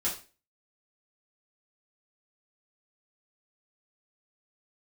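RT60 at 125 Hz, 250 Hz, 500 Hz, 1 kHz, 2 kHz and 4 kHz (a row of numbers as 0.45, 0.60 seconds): 0.35, 0.40, 0.35, 0.30, 0.35, 0.35 seconds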